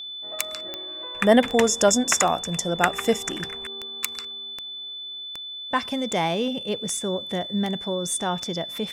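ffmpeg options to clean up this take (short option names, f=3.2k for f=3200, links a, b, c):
-af "adeclick=t=4,bandreject=f=3.5k:w=30"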